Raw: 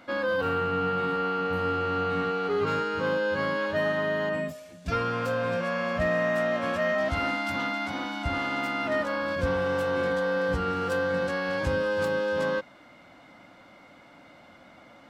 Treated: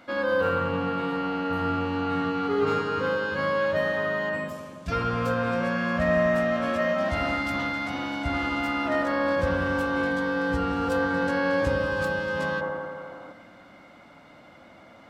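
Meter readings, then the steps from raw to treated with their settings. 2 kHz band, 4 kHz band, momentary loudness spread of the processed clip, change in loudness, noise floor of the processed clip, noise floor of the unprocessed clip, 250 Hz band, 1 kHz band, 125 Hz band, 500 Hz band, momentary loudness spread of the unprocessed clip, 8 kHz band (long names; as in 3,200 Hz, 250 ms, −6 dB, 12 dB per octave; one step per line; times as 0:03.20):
+2.0 dB, 0.0 dB, 6 LU, +1.5 dB, −51 dBFS, −53 dBFS, +4.5 dB, +1.5 dB, +2.0 dB, +0.5 dB, 3 LU, can't be measured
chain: delay with a low-pass on its return 85 ms, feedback 75%, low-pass 1,700 Hz, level −5.5 dB
gain on a spectral selection 0:12.61–0:13.32, 270–1,500 Hz +7 dB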